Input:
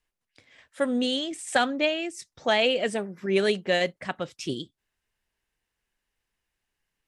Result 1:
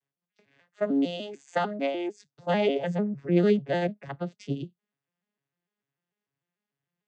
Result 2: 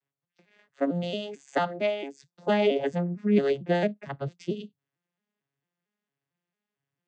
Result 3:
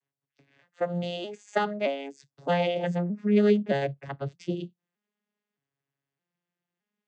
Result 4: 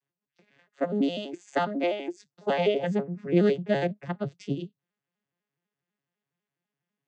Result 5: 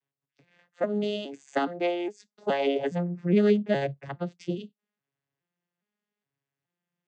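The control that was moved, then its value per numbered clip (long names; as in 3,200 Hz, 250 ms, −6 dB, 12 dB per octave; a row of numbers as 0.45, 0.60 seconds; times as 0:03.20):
vocoder with an arpeggio as carrier, a note every: 149, 225, 618, 83, 415 milliseconds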